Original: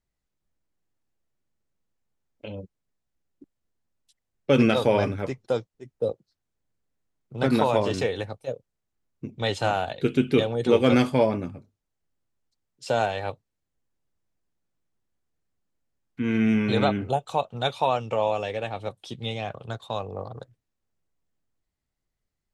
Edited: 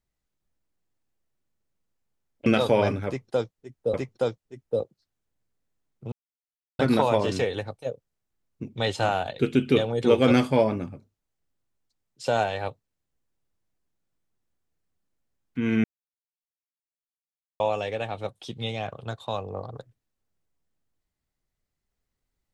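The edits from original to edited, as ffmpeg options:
-filter_complex "[0:a]asplit=6[s0][s1][s2][s3][s4][s5];[s0]atrim=end=2.462[s6];[s1]atrim=start=4.618:end=6.102[s7];[s2]atrim=start=5.228:end=7.41,asetpts=PTS-STARTPTS,afade=t=out:st=2.178:d=0.004:c=hsin,apad=pad_dur=0.67[s8];[s3]atrim=start=7.41:end=16.46,asetpts=PTS-STARTPTS,afade=t=in:d=0.004:c=hsin,afade=t=out:st=9.046:d=0.004:c=hsin[s9];[s4]atrim=start=16.46:end=18.22,asetpts=PTS-STARTPTS,volume=0[s10];[s5]atrim=start=18.22,asetpts=PTS-STARTPTS,afade=t=in:d=0.004:c=hsin[s11];[s6][s7]acrossfade=d=0.004:c1=hsin:c2=hsin[s12];[s8][s9][s10][s11]concat=n=4:v=0:a=1[s13];[s12][s13]acrossfade=d=0.004:c1=hsin:c2=hsin"

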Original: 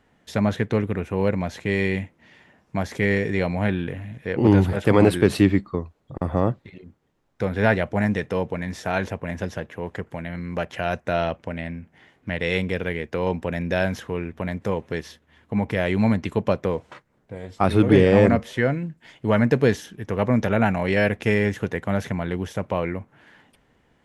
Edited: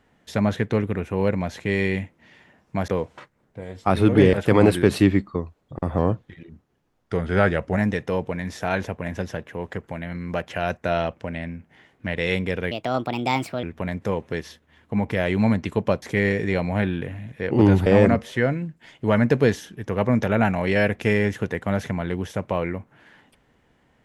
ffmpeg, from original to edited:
-filter_complex "[0:a]asplit=9[s0][s1][s2][s3][s4][s5][s6][s7][s8];[s0]atrim=end=2.882[s9];[s1]atrim=start=16.618:end=18.072[s10];[s2]atrim=start=4.718:end=6.374[s11];[s3]atrim=start=6.37:end=7.99,asetpts=PTS-STARTPTS,asetrate=40131,aresample=44100[s12];[s4]atrim=start=7.986:end=12.944[s13];[s5]atrim=start=12.94:end=14.23,asetpts=PTS-STARTPTS,asetrate=61740,aresample=44100[s14];[s6]atrim=start=14.226:end=16.622[s15];[s7]atrim=start=2.878:end=4.722[s16];[s8]atrim=start=18.068[s17];[s9][s10]acrossfade=d=0.004:c1=hsin:c2=hsin[s18];[s18][s11]acrossfade=d=0.004:c1=hsin:c2=hsin[s19];[s19][s12]acrossfade=d=0.004:c1=hsin:c2=hsin[s20];[s20][s13]acrossfade=d=0.004:c1=hsin:c2=hsin[s21];[s21][s14]acrossfade=d=0.004:c1=hsin:c2=hsin[s22];[s22][s15]acrossfade=d=0.004:c1=hsin:c2=hsin[s23];[s23][s16]acrossfade=d=0.004:c1=hsin:c2=hsin[s24];[s24][s17]acrossfade=d=0.004:c1=hsin:c2=hsin"

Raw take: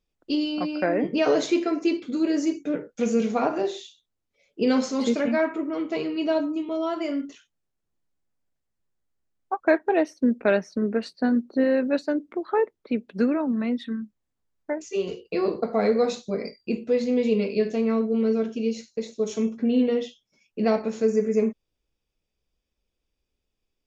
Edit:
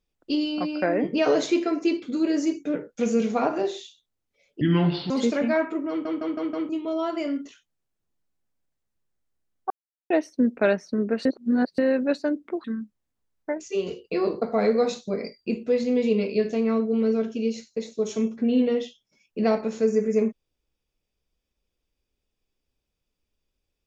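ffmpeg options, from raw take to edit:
-filter_complex "[0:a]asplit=13[s0][s1][s2][s3][s4][s5][s6][s7][s8][s9][s10][s11][s12];[s0]atrim=end=4.614[s13];[s1]atrim=start=4.61:end=4.94,asetpts=PTS-STARTPTS,asetrate=29547,aresample=44100[s14];[s2]atrim=start=4.936:end=5.892[s15];[s3]atrim=start=5.728:end=5.892[s16];[s4]atrim=start=5.728:end=5.892[s17];[s5]atrim=start=5.728:end=5.892[s18];[s6]atrim=start=5.728:end=5.892[s19];[s7]atrim=start=6.528:end=9.54,asetpts=PTS-STARTPTS,afade=t=out:st=3.008:d=0.004:c=hsin[s20];[s8]atrim=start=9.54:end=9.94,asetpts=PTS-STARTPTS,volume=0[s21];[s9]atrim=start=9.94:end=11.092,asetpts=PTS-STARTPTS,afade=t=in:d=0.004:c=hsin[s22];[s10]atrim=start=11.088:end=11.622,asetpts=PTS-STARTPTS,areverse[s23];[s11]atrim=start=11.618:end=12.482[s24];[s12]atrim=start=13.848[s25];[s13][s14]acrossfade=d=0.004:c1=hsin:c2=hsin[s26];[s26][s15]acrossfade=d=0.004:c1=hsin:c2=hsin[s27];[s27][s16]acrossfade=d=0.004:c1=hsin:c2=hsin[s28];[s28][s17]acrossfade=d=0.004:c1=hsin:c2=hsin[s29];[s29][s18]acrossfade=d=0.004:c1=hsin:c2=hsin[s30];[s30][s19]acrossfade=d=0.004:c1=hsin:c2=hsin[s31];[s20][s21][s22]concat=n=3:v=0:a=1[s32];[s31][s32]acrossfade=d=0.004:c1=hsin:c2=hsin[s33];[s33][s23]acrossfade=d=0.004:c1=hsin:c2=hsin[s34];[s34][s24]acrossfade=d=0.004:c1=hsin:c2=hsin[s35];[s35][s25]acrossfade=d=0.004:c1=hsin:c2=hsin"

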